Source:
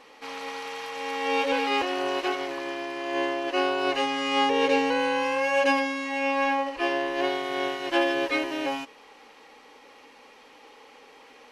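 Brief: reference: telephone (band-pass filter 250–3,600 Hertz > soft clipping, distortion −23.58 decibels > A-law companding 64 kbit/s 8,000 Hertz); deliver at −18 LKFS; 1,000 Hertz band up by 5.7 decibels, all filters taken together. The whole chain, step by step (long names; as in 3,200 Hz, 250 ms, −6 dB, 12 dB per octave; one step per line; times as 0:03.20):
band-pass filter 250–3,600 Hz
parametric band 1,000 Hz +7.5 dB
soft clipping −11 dBFS
level +6.5 dB
A-law companding 64 kbit/s 8,000 Hz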